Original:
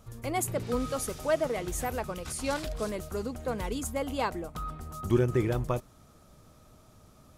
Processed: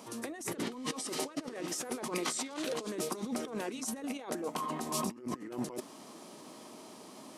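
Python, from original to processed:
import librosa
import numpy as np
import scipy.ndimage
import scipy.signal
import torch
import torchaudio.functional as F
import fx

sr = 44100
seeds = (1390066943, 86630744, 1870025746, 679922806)

y = scipy.signal.sosfilt(scipy.signal.butter(4, 240.0, 'highpass', fs=sr, output='sos'), x)
y = fx.over_compress(y, sr, threshold_db=-42.0, ratio=-1.0)
y = fx.formant_shift(y, sr, semitones=-3)
y = F.gain(torch.from_numpy(y), 3.0).numpy()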